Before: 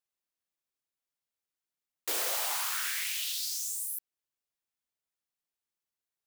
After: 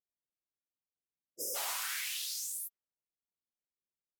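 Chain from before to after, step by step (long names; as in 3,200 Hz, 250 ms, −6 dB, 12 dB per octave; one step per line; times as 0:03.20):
healed spectral selection 0:01.41–0:02.30, 620–4,900 Hz before
low-pass that shuts in the quiet parts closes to 530 Hz, open at −32.5 dBFS
time stretch by phase vocoder 0.67×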